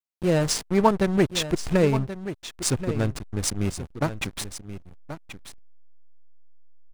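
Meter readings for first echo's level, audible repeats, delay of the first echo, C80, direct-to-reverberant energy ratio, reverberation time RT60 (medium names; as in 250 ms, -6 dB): -12.0 dB, 1, 1080 ms, no reverb, no reverb, no reverb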